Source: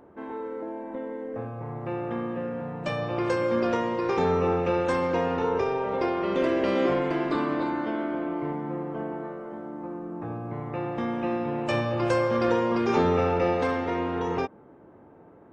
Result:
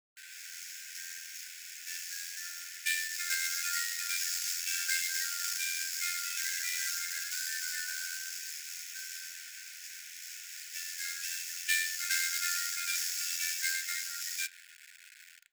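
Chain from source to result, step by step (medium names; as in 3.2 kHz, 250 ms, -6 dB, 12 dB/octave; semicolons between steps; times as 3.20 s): treble shelf 2.8 kHz +5.5 dB; level rider gain up to 9.5 dB; loudest bins only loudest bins 32; AM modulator 86 Hz, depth 35%; bit crusher 7-bit; in parallel at -6.5 dB: hard clipper -15.5 dBFS, distortion -12 dB; on the sum: sample-rate reducer 6.1 kHz, jitter 20%; brick-wall FIR high-pass 1.4 kHz; reverberation RT60 0.40 s, pre-delay 3 ms, DRR 13.5 dB; trim -6.5 dB; SBC 192 kbps 44.1 kHz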